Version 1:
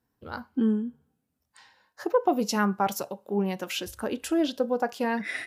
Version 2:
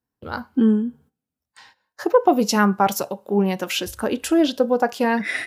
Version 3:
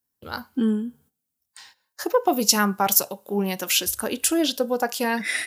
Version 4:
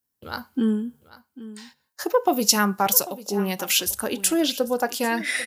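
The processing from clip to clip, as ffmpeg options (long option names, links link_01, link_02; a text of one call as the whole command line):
ffmpeg -i in.wav -af "agate=range=-15dB:threshold=-57dB:ratio=16:detection=peak,volume=7.5dB" out.wav
ffmpeg -i in.wav -af "crystalizer=i=4.5:c=0,volume=-5.5dB" out.wav
ffmpeg -i in.wav -af "aecho=1:1:794:0.141" out.wav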